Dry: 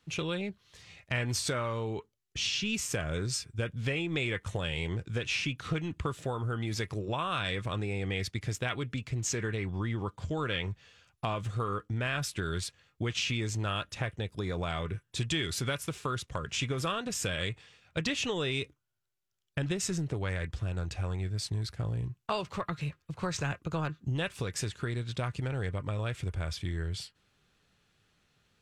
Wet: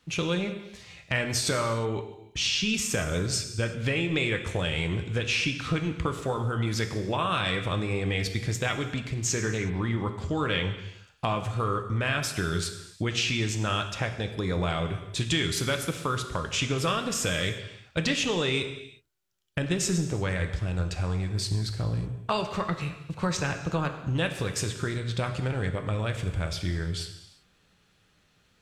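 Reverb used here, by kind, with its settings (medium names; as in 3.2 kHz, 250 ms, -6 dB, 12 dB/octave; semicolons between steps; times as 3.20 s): gated-style reverb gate 390 ms falling, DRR 6.5 dB; trim +4.5 dB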